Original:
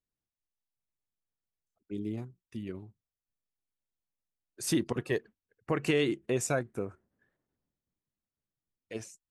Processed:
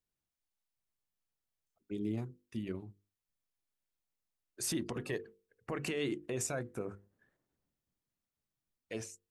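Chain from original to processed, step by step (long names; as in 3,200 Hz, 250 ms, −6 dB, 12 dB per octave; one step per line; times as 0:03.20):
brickwall limiter −27.5 dBFS, peak gain reduction 11.5 dB
mains-hum notches 50/100/150/200/250/300/350/400/450/500 Hz
level +1 dB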